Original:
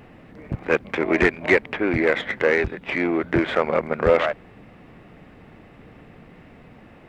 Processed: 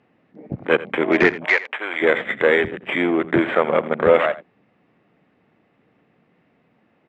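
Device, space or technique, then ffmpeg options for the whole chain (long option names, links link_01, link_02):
over-cleaned archive recording: -filter_complex "[0:a]highpass=150,lowpass=5600,afwtdn=0.0224,asplit=3[link_01][link_02][link_03];[link_01]afade=type=out:start_time=1.44:duration=0.02[link_04];[link_02]highpass=870,afade=type=in:start_time=1.44:duration=0.02,afade=type=out:start_time=2.01:duration=0.02[link_05];[link_03]afade=type=in:start_time=2.01:duration=0.02[link_06];[link_04][link_05][link_06]amix=inputs=3:normalize=0,aecho=1:1:85:0.141,volume=3dB"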